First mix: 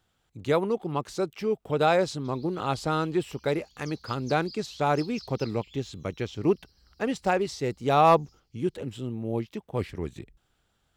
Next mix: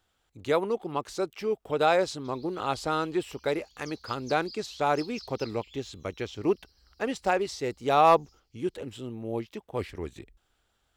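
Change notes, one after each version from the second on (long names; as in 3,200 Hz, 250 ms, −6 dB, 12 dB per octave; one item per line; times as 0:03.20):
master: add parametric band 150 Hz −8.5 dB 1.4 octaves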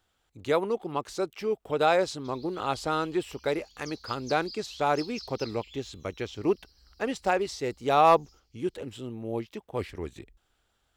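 background: send +11.0 dB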